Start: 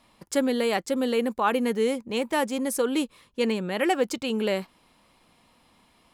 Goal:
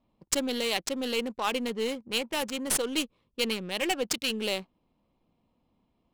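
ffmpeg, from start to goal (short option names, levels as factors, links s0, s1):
-af "aexciter=amount=3.6:drive=8.2:freq=2500,aeval=exprs='0.841*(cos(1*acos(clip(val(0)/0.841,-1,1)))-cos(1*PI/2))+0.188*(cos(2*acos(clip(val(0)/0.841,-1,1)))-cos(2*PI/2))':c=same,adynamicsmooth=sensitivity=2.5:basefreq=620,volume=0.473"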